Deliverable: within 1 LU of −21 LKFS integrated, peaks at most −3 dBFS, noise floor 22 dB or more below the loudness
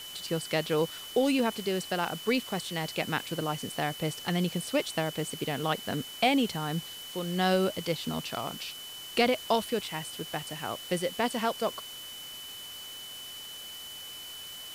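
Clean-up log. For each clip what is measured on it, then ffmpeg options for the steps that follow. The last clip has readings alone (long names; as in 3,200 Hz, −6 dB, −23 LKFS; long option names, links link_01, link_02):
interfering tone 3,000 Hz; level of the tone −42 dBFS; background noise floor −43 dBFS; target noise floor −54 dBFS; integrated loudness −31.5 LKFS; sample peak −13.5 dBFS; target loudness −21.0 LKFS
→ -af "bandreject=frequency=3000:width=30"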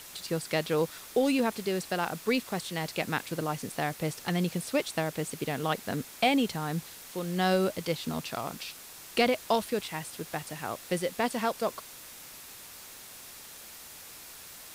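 interfering tone none found; background noise floor −48 dBFS; target noise floor −53 dBFS
→ -af "afftdn=noise_reduction=6:noise_floor=-48"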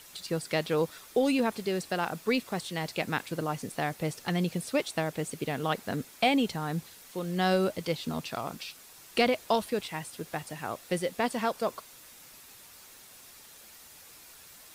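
background noise floor −52 dBFS; target noise floor −53 dBFS
→ -af "afftdn=noise_reduction=6:noise_floor=-52"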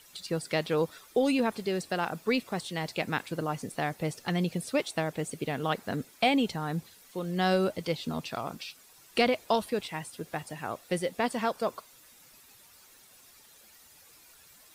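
background noise floor −57 dBFS; integrated loudness −31.0 LKFS; sample peak −13.5 dBFS; target loudness −21.0 LKFS
→ -af "volume=10dB"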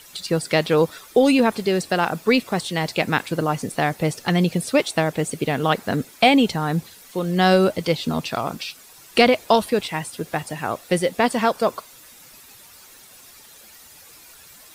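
integrated loudness −21.0 LKFS; sample peak −3.5 dBFS; background noise floor −47 dBFS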